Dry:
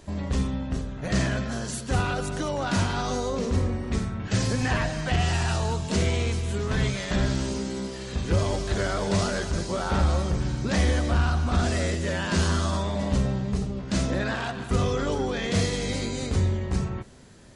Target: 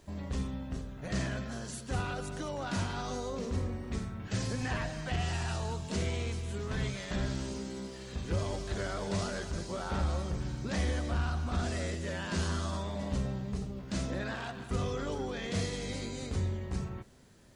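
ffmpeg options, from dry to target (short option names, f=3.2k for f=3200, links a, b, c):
-af "acrusher=bits=10:mix=0:aa=0.000001,volume=-9dB"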